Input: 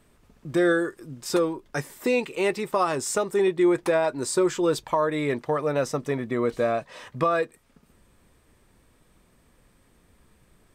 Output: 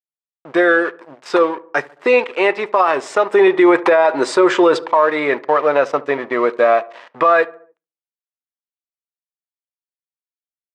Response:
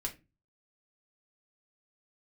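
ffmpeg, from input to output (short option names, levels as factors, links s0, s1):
-filter_complex "[0:a]asplit=3[s0][s1][s2];[s0]afade=t=out:st=3.3:d=0.02[s3];[s1]acontrast=56,afade=t=in:st=3.3:d=0.02,afade=t=out:st=4.76:d=0.02[s4];[s2]afade=t=in:st=4.76:d=0.02[s5];[s3][s4][s5]amix=inputs=3:normalize=0,aeval=exprs='sgn(val(0))*max(abs(val(0))-0.00841,0)':c=same,highpass=540,lowpass=2400,asplit=2[s6][s7];[s7]adelay=72,lowpass=f=1400:p=1,volume=0.0944,asplit=2[s8][s9];[s9]adelay=72,lowpass=f=1400:p=1,volume=0.54,asplit=2[s10][s11];[s11]adelay=72,lowpass=f=1400:p=1,volume=0.54,asplit=2[s12][s13];[s13]adelay=72,lowpass=f=1400:p=1,volume=0.54[s14];[s6][s8][s10][s12][s14]amix=inputs=5:normalize=0,asplit=2[s15][s16];[1:a]atrim=start_sample=2205[s17];[s16][s17]afir=irnorm=-1:irlink=0,volume=0.158[s18];[s15][s18]amix=inputs=2:normalize=0,alimiter=level_in=7.5:limit=0.891:release=50:level=0:latency=1,volume=0.708"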